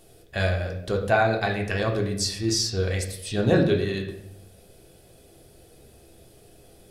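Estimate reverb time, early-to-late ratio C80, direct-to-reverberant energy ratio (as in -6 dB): 0.80 s, 11.0 dB, 0.5 dB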